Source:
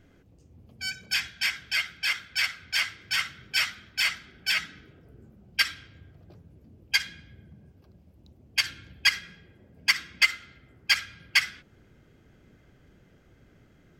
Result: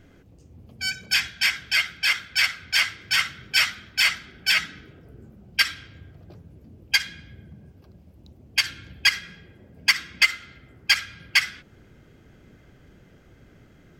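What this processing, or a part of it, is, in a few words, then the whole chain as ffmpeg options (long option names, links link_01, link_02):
limiter into clipper: -af "alimiter=limit=-10.5dB:level=0:latency=1:release=306,asoftclip=type=hard:threshold=-12dB,volume=5.5dB"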